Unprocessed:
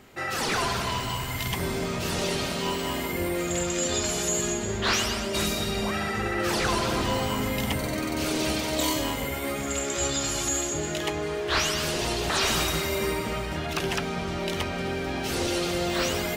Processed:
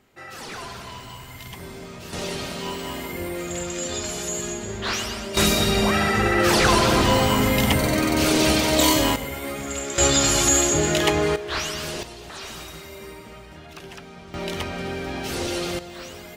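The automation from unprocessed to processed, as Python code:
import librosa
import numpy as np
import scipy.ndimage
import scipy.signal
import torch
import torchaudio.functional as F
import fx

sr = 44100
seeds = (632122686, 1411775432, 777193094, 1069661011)

y = fx.gain(x, sr, db=fx.steps((0.0, -9.0), (2.13, -2.0), (5.37, 8.0), (9.16, -0.5), (9.98, 9.0), (11.36, -2.5), (12.03, -12.0), (14.34, 0.0), (15.79, -11.5)))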